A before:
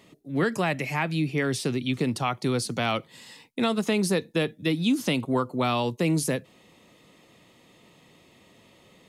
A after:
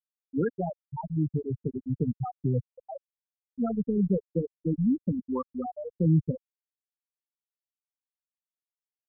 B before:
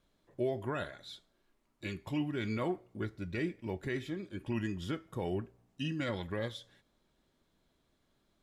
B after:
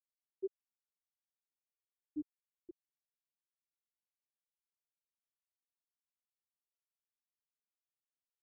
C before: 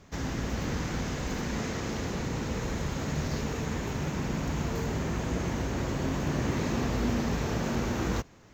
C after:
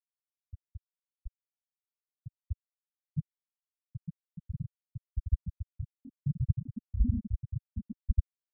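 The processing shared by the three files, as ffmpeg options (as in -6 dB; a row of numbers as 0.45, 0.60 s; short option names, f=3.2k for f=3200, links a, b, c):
-af "afftfilt=real='re*gte(hypot(re,im),0.355)':imag='im*gte(hypot(re,im),0.355)':win_size=1024:overlap=0.75,asubboost=boost=6.5:cutoff=120"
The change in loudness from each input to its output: -3.5, -9.0, -5.5 LU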